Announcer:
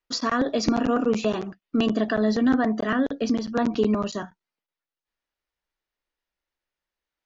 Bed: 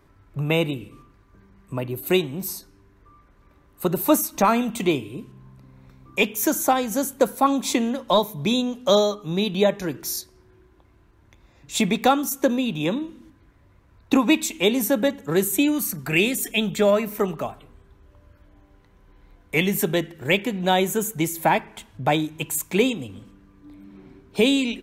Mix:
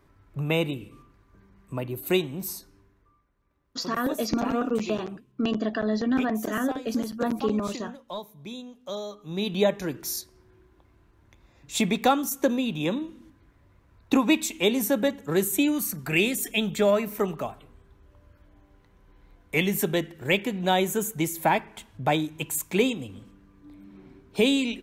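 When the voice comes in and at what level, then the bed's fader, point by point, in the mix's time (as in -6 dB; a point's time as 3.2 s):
3.65 s, -4.0 dB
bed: 2.78 s -3.5 dB
3.3 s -17 dB
8.97 s -17 dB
9.51 s -3 dB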